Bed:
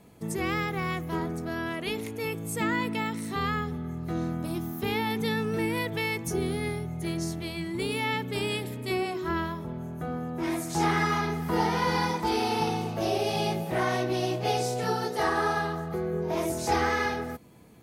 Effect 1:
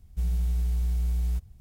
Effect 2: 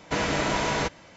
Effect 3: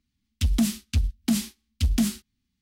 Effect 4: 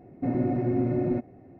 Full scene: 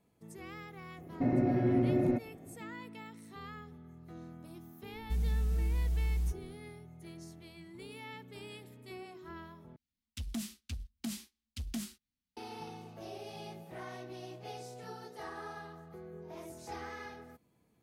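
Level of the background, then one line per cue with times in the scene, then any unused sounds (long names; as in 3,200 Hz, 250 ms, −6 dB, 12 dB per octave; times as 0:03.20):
bed −18 dB
0:00.98: mix in 4 −3 dB + high-shelf EQ 2,000 Hz +8 dB
0:04.93: mix in 1 −5 dB
0:09.76: overwrite with 3 −13 dB + low-shelf EQ 280 Hz −5.5 dB
not used: 2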